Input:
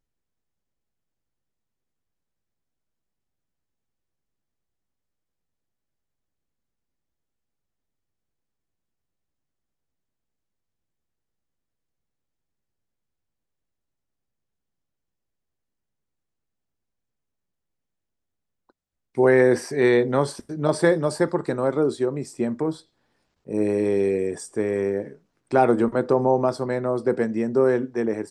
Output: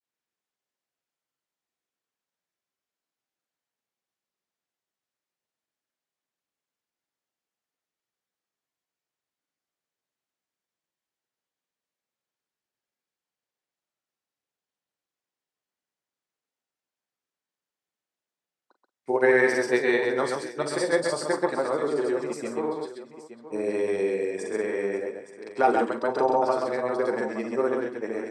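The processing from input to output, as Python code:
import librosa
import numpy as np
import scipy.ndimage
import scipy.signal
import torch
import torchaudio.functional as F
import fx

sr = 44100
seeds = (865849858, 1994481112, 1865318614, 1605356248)

y = fx.weighting(x, sr, curve='A')
y = fx.granulator(y, sr, seeds[0], grain_ms=100.0, per_s=20.0, spray_ms=100.0, spread_st=0)
y = fx.echo_multitap(y, sr, ms=(41, 131, 180, 548, 871), db=(-11.0, -4.5, -19.0, -17.5, -13.5))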